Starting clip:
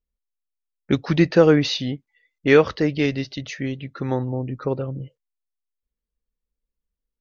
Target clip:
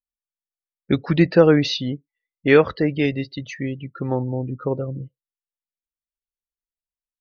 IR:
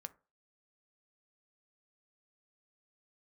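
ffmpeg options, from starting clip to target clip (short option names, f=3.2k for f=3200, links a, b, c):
-filter_complex "[0:a]asplit=2[a][b];[1:a]atrim=start_sample=2205,afade=t=out:st=0.17:d=0.01,atrim=end_sample=7938[c];[b][c]afir=irnorm=-1:irlink=0,volume=-8.5dB[d];[a][d]amix=inputs=2:normalize=0,afftdn=nr=21:nf=-33,volume=-1dB"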